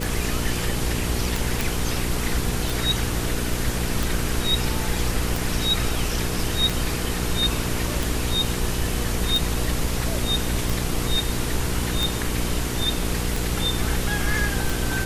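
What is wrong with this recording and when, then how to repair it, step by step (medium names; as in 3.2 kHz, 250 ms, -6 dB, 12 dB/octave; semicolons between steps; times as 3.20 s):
hum 60 Hz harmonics 8 -28 dBFS
tick 45 rpm
1.61 s: pop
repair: de-click; de-hum 60 Hz, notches 8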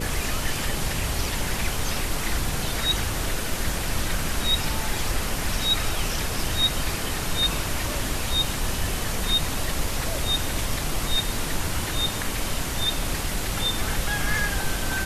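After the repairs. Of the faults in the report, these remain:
nothing left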